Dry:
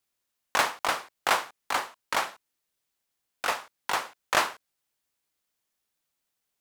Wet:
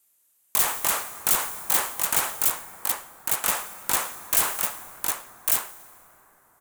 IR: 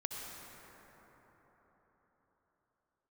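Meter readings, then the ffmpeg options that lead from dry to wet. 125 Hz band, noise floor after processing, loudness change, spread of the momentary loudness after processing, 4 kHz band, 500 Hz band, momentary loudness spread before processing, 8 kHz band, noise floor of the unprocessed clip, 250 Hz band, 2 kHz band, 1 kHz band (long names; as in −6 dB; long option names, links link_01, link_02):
+7.5 dB, −66 dBFS, +5.5 dB, 7 LU, +1.0 dB, −2.5 dB, 6 LU, +13.5 dB, −82 dBFS, +2.5 dB, −2.0 dB, −2.5 dB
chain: -filter_complex "[0:a]lowshelf=frequency=120:gain=-8,aresample=32000,aresample=44100,aeval=exprs='(mod(8.41*val(0)+1,2)-1)/8.41':channel_layout=same,aecho=1:1:1149:0.316,asplit=2[link_01][link_02];[1:a]atrim=start_sample=2205[link_03];[link_02][link_03]afir=irnorm=-1:irlink=0,volume=-15dB[link_04];[link_01][link_04]amix=inputs=2:normalize=0,acontrast=82,asoftclip=type=tanh:threshold=-20dB,aexciter=amount=5.3:drive=3.5:freq=6900,alimiter=level_in=3.5dB:limit=-1dB:release=50:level=0:latency=1,volume=-5.5dB"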